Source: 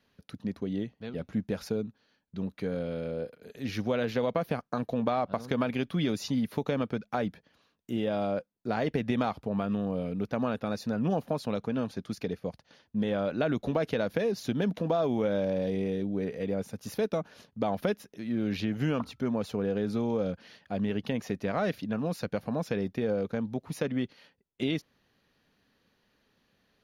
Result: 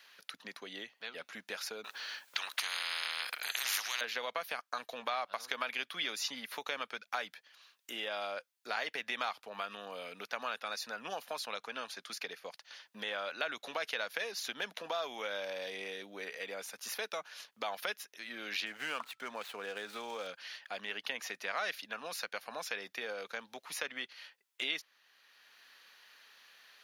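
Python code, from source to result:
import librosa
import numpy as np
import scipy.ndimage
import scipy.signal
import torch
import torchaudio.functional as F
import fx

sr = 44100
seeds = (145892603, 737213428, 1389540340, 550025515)

y = fx.spectral_comp(x, sr, ratio=10.0, at=(1.84, 4.01))
y = fx.median_filter(y, sr, points=9, at=(18.66, 20.27))
y = scipy.signal.sosfilt(scipy.signal.butter(2, 1400.0, 'highpass', fs=sr, output='sos'), y)
y = fx.band_squash(y, sr, depth_pct=40)
y = y * 10.0 ** (4.5 / 20.0)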